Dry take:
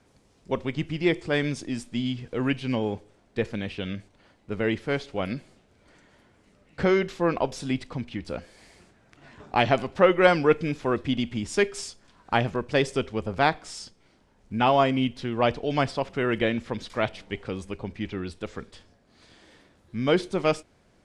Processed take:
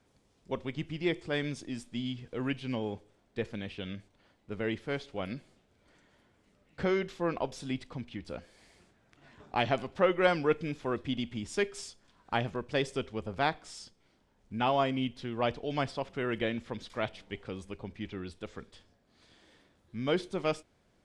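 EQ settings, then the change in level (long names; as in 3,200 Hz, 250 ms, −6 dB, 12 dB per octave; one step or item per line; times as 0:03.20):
parametric band 3,400 Hz +3 dB 0.23 octaves
−7.5 dB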